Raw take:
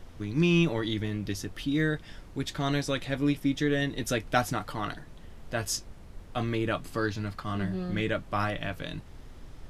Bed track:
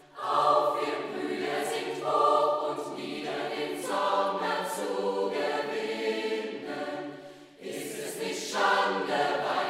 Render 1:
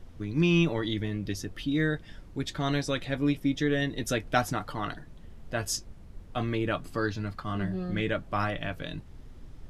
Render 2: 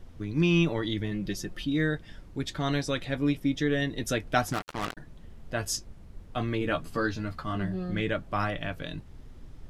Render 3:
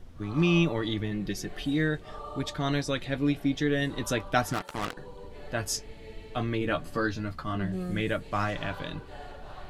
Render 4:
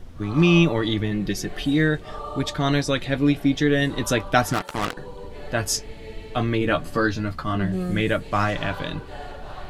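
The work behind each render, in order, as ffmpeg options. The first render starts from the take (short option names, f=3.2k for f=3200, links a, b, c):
-af "afftdn=nr=6:nf=-48"
-filter_complex "[0:a]asettb=1/sr,asplit=3[a][b][c];[a]atrim=end=1.114[d];[b]atrim=start=1.11:end=1.65,asetpts=PTS-STARTPTS,afade=t=in:d=0.004:c=qsin,afade=t=out:st=0.536:d=0.004:c=qsin,aecho=1:1:5.6:0.59,atrim=end_sample=23814[e];[c]atrim=start=1.646[f];[d][e]acrossfade=d=0.004:c1=hsin:c2=qsin[g];[g][f]acrossfade=d=0.004:c1=qsin:c2=hsin,asettb=1/sr,asplit=3[h][i][j];[h]atrim=end=4.524[k];[i]atrim=start=4.52:end=4.97,asetpts=PTS-STARTPTS,afade=t=in:d=0.004:c=qsin,afade=t=out:st=0.446:d=0.004:c=qsin,acrusher=bits=4:mix=0:aa=0.5[l];[j]atrim=start=4.966[m];[k][l]acrossfade=d=0.004:c1=hsin:c2=qsin[n];[n][m]acrossfade=d=0.004:c1=qsin:c2=hsin,asettb=1/sr,asplit=3[o][p][q];[o]atrim=end=6.604[r];[p]atrim=start=6.6:end=7.56,asetpts=PTS-STARTPTS,afade=t=in:d=0.004:c=qsin,afade=t=out:st=0.956:d=0.004:c=qsin,asplit=2[s][t];[t]adelay=13,volume=-4.5dB[u];[s][u]amix=inputs=2:normalize=0,atrim=end_sample=42336[v];[q]atrim=start=7.556[w];[r][v]acrossfade=d=0.004:c1=hsin:c2=qsin[x];[x][w]acrossfade=d=0.004:c1=qsin:c2=hsin"
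-filter_complex "[1:a]volume=-18dB[a];[0:a][a]amix=inputs=2:normalize=0"
-af "volume=7dB,alimiter=limit=-3dB:level=0:latency=1"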